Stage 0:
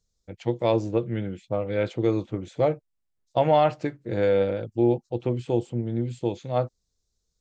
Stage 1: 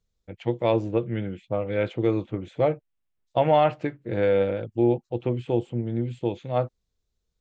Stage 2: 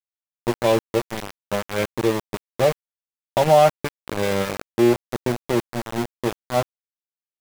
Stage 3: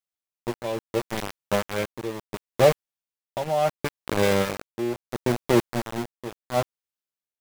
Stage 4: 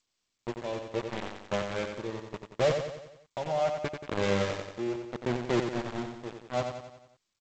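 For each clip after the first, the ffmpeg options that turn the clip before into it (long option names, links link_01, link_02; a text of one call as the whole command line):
ffmpeg -i in.wav -af "highshelf=frequency=3900:width_type=q:width=1.5:gain=-8" out.wav
ffmpeg -i in.wav -af "aecho=1:1:5.1:0.52,aeval=exprs='val(0)*gte(abs(val(0)),0.0668)':channel_layout=same,volume=3dB" out.wav
ffmpeg -i in.wav -af "tremolo=f=0.72:d=0.79,volume=2dB" out.wav
ffmpeg -i in.wav -filter_complex "[0:a]asoftclip=type=tanh:threshold=-12.5dB,asplit=2[link_01][link_02];[link_02]aecho=0:1:90|180|270|360|450|540:0.473|0.246|0.128|0.0665|0.0346|0.018[link_03];[link_01][link_03]amix=inputs=2:normalize=0,volume=-5.5dB" -ar 16000 -c:a g722 out.g722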